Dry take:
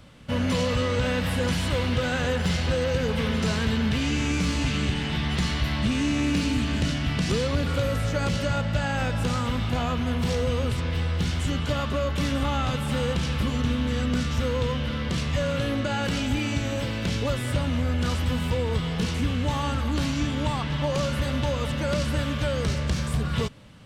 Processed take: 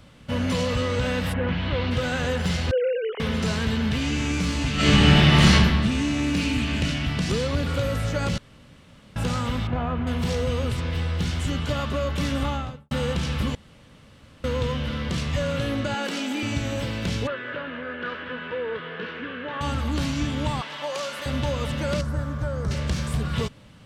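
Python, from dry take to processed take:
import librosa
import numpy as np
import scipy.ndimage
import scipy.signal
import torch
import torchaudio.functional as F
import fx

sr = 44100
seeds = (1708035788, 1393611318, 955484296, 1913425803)

y = fx.lowpass(x, sr, hz=fx.line((1.32, 2200.0), (1.9, 5000.0)), slope=24, at=(1.32, 1.9), fade=0.02)
y = fx.sine_speech(y, sr, at=(2.71, 3.2))
y = fx.reverb_throw(y, sr, start_s=4.75, length_s=0.77, rt60_s=1.3, drr_db=-12.0)
y = fx.peak_eq(y, sr, hz=2500.0, db=6.0, octaves=0.54, at=(6.38, 7.06))
y = fx.lowpass(y, sr, hz=1800.0, slope=12, at=(9.67, 10.07))
y = fx.studio_fade_out(y, sr, start_s=12.42, length_s=0.49)
y = fx.steep_highpass(y, sr, hz=220.0, slope=36, at=(15.94, 16.43))
y = fx.cabinet(y, sr, low_hz=400.0, low_slope=12, high_hz=2800.0, hz=(440.0, 790.0, 1600.0, 2200.0), db=(4, -10, 10, -4), at=(17.27, 19.61))
y = fx.highpass(y, sr, hz=550.0, slope=12, at=(20.61, 21.26))
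y = fx.curve_eq(y, sr, hz=(140.0, 250.0, 1400.0, 2800.0, 5800.0), db=(0, -5, -2, -20, -10), at=(22.01, 22.71))
y = fx.edit(y, sr, fx.room_tone_fill(start_s=8.38, length_s=0.78),
    fx.room_tone_fill(start_s=13.55, length_s=0.89), tone=tone)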